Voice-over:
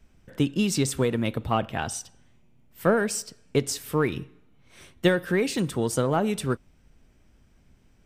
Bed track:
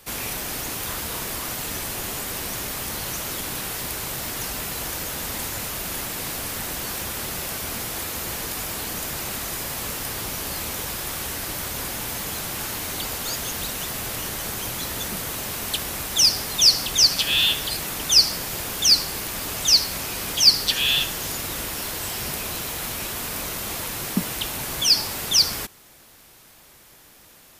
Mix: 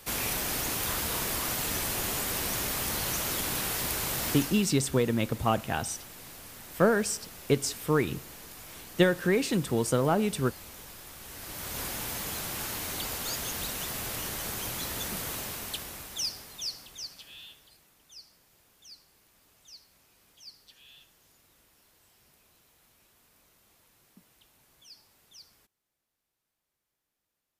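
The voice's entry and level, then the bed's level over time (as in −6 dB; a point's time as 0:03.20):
3.95 s, −1.5 dB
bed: 0:04.32 −1.5 dB
0:04.76 −17 dB
0:11.19 −17 dB
0:11.79 −5.5 dB
0:15.34 −5.5 dB
0:17.94 −34.5 dB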